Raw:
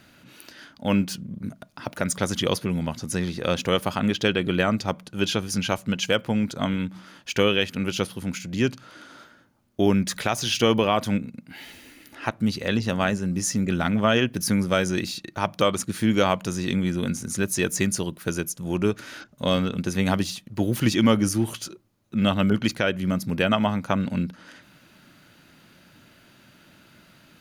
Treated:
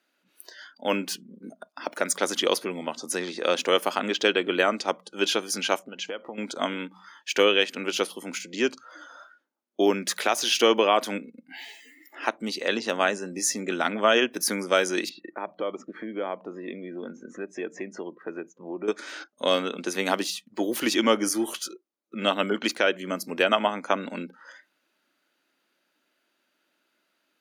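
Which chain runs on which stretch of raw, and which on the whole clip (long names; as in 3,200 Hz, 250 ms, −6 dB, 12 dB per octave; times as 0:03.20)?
0:05.79–0:06.38: low-pass filter 2,400 Hz 6 dB per octave + downward compressor 16 to 1, threshold −29 dBFS
0:15.09–0:18.88: low-pass filter 1,800 Hz + dynamic equaliser 1,200 Hz, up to −6 dB, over −37 dBFS, Q 0.89 + downward compressor 2.5 to 1, threshold −28 dBFS
whole clip: high-pass filter 300 Hz 24 dB per octave; noise reduction from a noise print of the clip's start 19 dB; level +1.5 dB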